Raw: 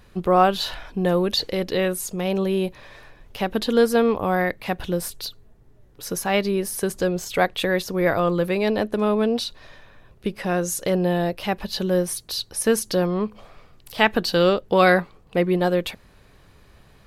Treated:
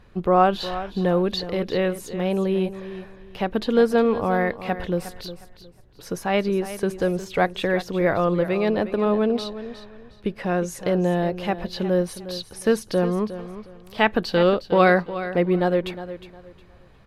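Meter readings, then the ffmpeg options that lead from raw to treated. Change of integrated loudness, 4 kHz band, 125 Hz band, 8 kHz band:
-0.5 dB, -5.0 dB, 0.0 dB, -10.5 dB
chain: -filter_complex "[0:a]lowpass=f=2.4k:p=1,asplit=2[a][b];[b]aecho=0:1:360|720|1080:0.224|0.0582|0.0151[c];[a][c]amix=inputs=2:normalize=0"

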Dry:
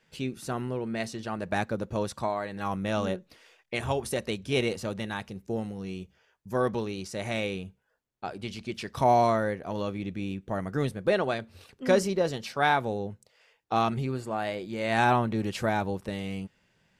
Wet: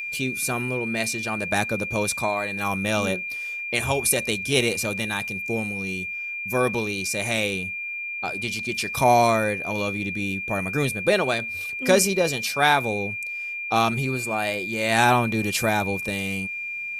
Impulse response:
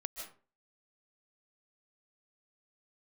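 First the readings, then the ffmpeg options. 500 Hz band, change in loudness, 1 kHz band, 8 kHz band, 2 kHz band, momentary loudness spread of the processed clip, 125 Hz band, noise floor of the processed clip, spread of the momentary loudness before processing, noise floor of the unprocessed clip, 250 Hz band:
+4.0 dB, +6.0 dB, +4.5 dB, +16.0 dB, +11.0 dB, 9 LU, +3.5 dB, -32 dBFS, 12 LU, -70 dBFS, +3.5 dB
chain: -af "aeval=exprs='val(0)+0.0158*sin(2*PI*2400*n/s)':c=same,aemphasis=mode=production:type=75fm,volume=4.5dB"

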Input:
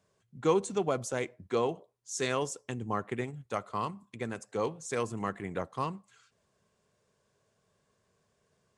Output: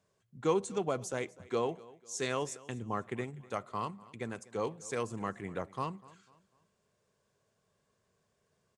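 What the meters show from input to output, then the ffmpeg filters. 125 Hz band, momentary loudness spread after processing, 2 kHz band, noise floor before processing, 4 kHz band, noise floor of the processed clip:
-3.0 dB, 10 LU, -3.0 dB, -75 dBFS, -3.0 dB, -78 dBFS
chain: -af "aecho=1:1:248|496|744:0.0891|0.033|0.0122,volume=-3dB"

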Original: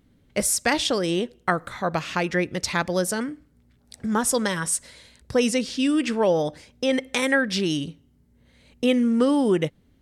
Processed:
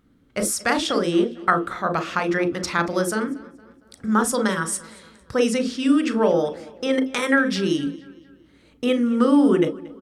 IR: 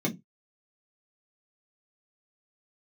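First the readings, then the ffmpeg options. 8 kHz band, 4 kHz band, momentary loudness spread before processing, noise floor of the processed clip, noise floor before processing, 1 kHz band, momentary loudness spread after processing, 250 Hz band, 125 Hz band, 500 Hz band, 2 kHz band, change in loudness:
-2.5 dB, -1.5 dB, 7 LU, -56 dBFS, -61 dBFS, +3.5 dB, 10 LU, +3.0 dB, 0.0 dB, +1.5 dB, +1.5 dB, +2.0 dB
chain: -filter_complex "[0:a]equalizer=f=1.3k:w=2.5:g=10.5,asplit=2[a][b];[b]adelay=231,lowpass=f=4.8k:p=1,volume=-20dB,asplit=2[c][d];[d]adelay=231,lowpass=f=4.8k:p=1,volume=0.47,asplit=2[e][f];[f]adelay=231,lowpass=f=4.8k:p=1,volume=0.47,asplit=2[g][h];[h]adelay=231,lowpass=f=4.8k:p=1,volume=0.47[i];[a][c][e][g][i]amix=inputs=5:normalize=0,asplit=2[j][k];[1:a]atrim=start_sample=2205,asetrate=66150,aresample=44100,adelay=33[l];[k][l]afir=irnorm=-1:irlink=0,volume=-13.5dB[m];[j][m]amix=inputs=2:normalize=0,volume=-2.5dB"

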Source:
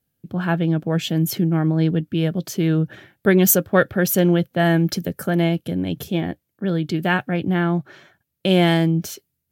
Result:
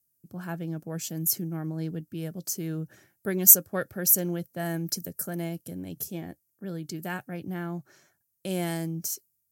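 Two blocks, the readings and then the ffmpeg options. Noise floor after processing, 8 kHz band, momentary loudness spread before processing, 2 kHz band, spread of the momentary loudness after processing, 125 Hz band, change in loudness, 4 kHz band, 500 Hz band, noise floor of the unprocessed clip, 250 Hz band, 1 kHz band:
-76 dBFS, +2.5 dB, 10 LU, -15.0 dB, 18 LU, -14.0 dB, -6.0 dB, -11.5 dB, -14.0 dB, -77 dBFS, -14.0 dB, -14.5 dB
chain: -af "highshelf=f=5.3k:g=-10,aexciter=amount=15.5:drive=5.1:freq=5.2k,volume=-14dB"

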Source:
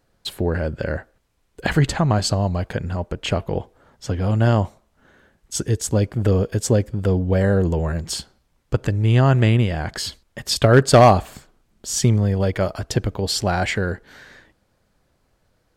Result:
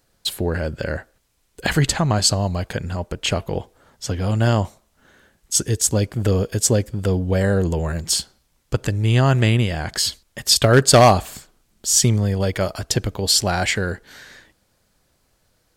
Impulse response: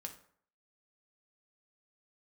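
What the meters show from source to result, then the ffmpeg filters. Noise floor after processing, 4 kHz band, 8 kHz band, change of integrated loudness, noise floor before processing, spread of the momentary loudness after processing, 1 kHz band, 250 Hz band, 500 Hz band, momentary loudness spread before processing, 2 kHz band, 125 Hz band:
-66 dBFS, +6.0 dB, +8.5 dB, +1.0 dB, -67 dBFS, 13 LU, 0.0 dB, -1.0 dB, -0.5 dB, 14 LU, +1.5 dB, -1.0 dB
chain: -af "highshelf=f=3.2k:g=11,volume=-1dB"

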